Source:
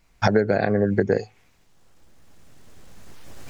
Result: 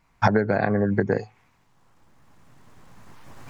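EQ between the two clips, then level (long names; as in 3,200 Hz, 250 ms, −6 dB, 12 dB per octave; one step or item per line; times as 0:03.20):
octave-band graphic EQ 125/250/1,000/2,000 Hz +8/+5/+12/+4 dB
−7.0 dB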